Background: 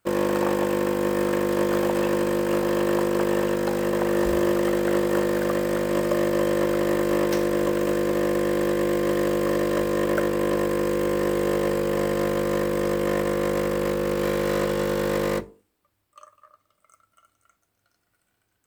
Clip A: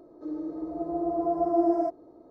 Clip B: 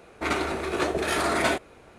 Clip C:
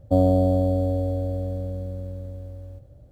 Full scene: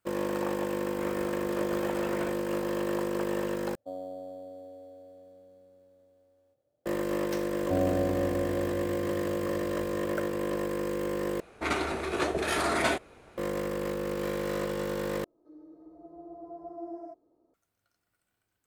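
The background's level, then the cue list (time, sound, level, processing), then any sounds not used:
background -8 dB
0.76 s: add B -15 dB + boxcar filter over 9 samples
3.75 s: replace with C -16.5 dB + high-pass 420 Hz
7.59 s: add C -8 dB + bass shelf 120 Hz -9.5 dB
11.40 s: replace with B -3 dB
15.24 s: replace with A -17 dB

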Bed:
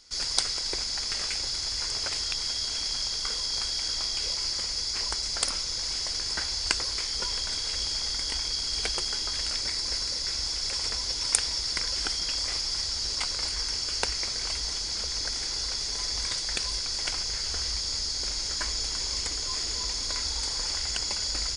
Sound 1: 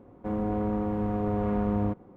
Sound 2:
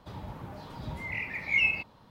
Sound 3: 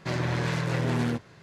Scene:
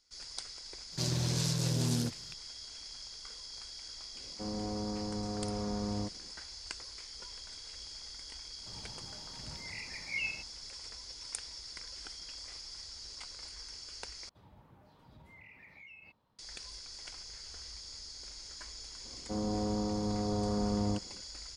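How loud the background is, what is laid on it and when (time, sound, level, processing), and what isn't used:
bed -16.5 dB
0.92 s: add 3 -3.5 dB + FFT filter 150 Hz 0 dB, 2 kHz -13 dB, 5.1 kHz +13 dB
4.15 s: add 1 -9 dB
8.60 s: add 2 -11 dB
14.29 s: replace with 2 -18 dB + compression, threshold -33 dBFS
19.05 s: add 1 -5 dB + low-pass 1.5 kHz

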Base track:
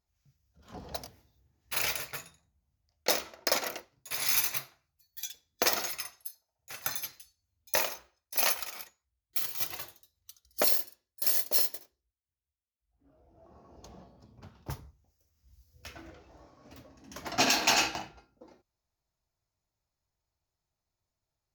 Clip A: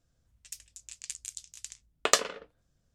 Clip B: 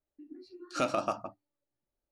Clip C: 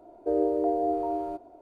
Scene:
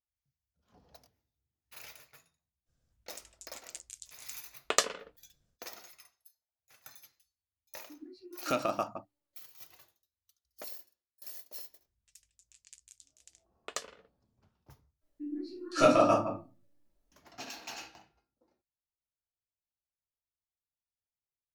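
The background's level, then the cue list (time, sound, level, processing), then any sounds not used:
base track -19 dB
2.65 s: add A -2.5 dB, fades 0.05 s + random-step tremolo
7.71 s: add B -1 dB
11.63 s: add A -15.5 dB
15.01 s: replace with B -0.5 dB + simulated room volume 140 m³, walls furnished, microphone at 2.9 m
not used: C

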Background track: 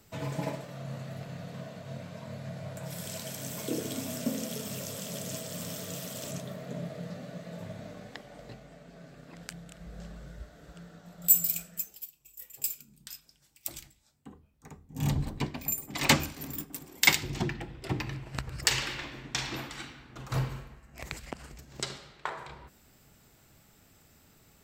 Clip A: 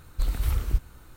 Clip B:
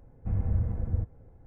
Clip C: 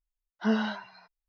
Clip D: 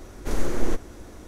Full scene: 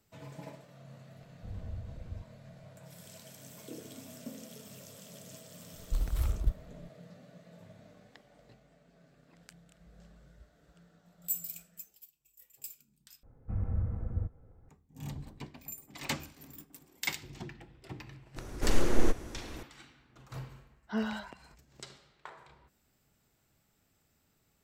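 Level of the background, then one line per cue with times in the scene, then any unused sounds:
background track -12.5 dB
1.18 s: add B -14 dB
5.73 s: add A -5 dB + local Wiener filter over 25 samples
13.23 s: replace with B -5 dB + peaking EQ 1.3 kHz +8.5 dB 0.25 oct
18.36 s: add D -1.5 dB
20.48 s: add C -7 dB

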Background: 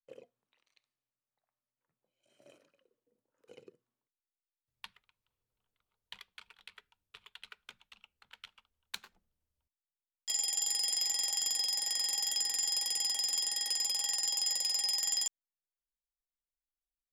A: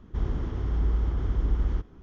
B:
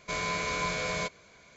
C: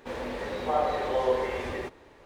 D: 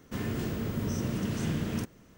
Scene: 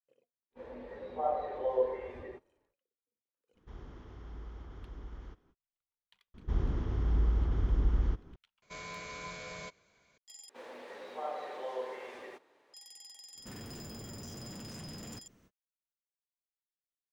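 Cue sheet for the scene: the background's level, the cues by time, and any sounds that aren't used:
background -19.5 dB
0.50 s: add C -4.5 dB, fades 0.10 s + spectral contrast expander 1.5:1
3.53 s: add A -12 dB, fades 0.05 s + bass shelf 300 Hz -9.5 dB
6.34 s: add A -3 dB
8.62 s: add B -12.5 dB
10.49 s: replace with C -12 dB + high-pass 350 Hz
13.34 s: add D -8.5 dB, fades 0.05 s + hard clipper -36 dBFS

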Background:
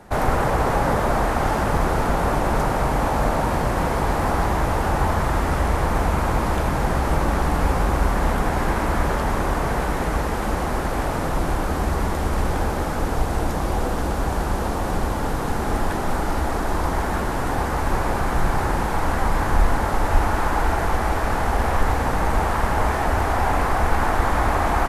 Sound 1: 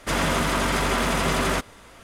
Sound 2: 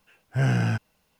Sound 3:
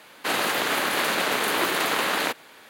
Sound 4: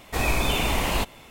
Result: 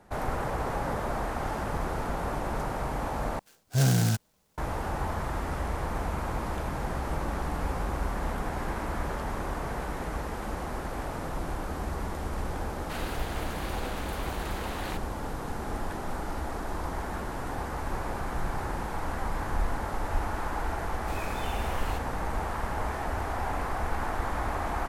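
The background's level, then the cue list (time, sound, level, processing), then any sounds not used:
background -11 dB
3.39 s: replace with 2 -0.5 dB + delay time shaken by noise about 5.4 kHz, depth 0.12 ms
12.65 s: add 3 -16.5 dB + gain riding
20.94 s: add 4 -15.5 dB
not used: 1

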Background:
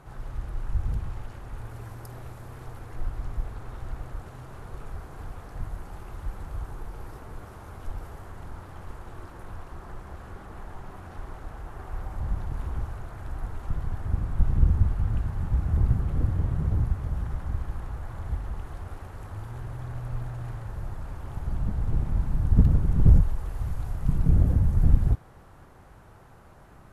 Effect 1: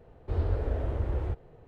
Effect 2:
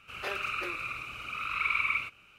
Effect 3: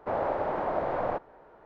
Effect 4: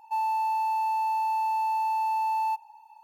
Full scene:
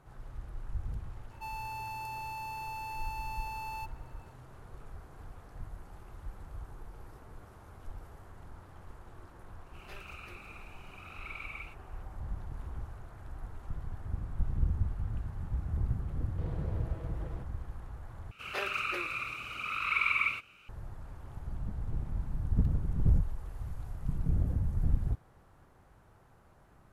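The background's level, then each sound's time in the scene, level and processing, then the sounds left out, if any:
background -9.5 dB
1.30 s: add 4 -2 dB + band-stop 860 Hz, Q 5.1
9.65 s: add 2 -16.5 dB + treble shelf 4.8 kHz +8 dB
16.09 s: add 1 -9.5 dB + comb filter that takes the minimum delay 6.1 ms
18.31 s: replace with 2
not used: 3

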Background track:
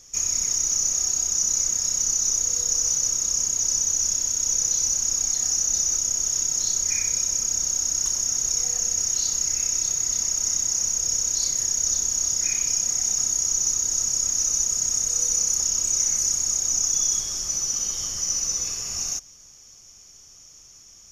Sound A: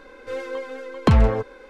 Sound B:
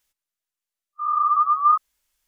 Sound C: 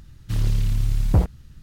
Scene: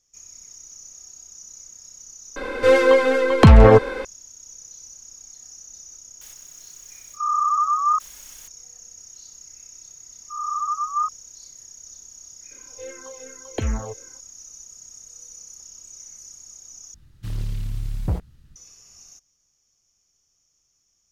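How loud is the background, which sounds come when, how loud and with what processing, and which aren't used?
background track -20 dB
2.36 s: replace with A -0.5 dB + loudness maximiser +16.5 dB
6.21 s: add B -3.5 dB + level flattener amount 50%
9.31 s: add B -6.5 dB
12.51 s: add A -6.5 dB + barber-pole phaser -2.7 Hz
16.94 s: replace with C -6.5 dB

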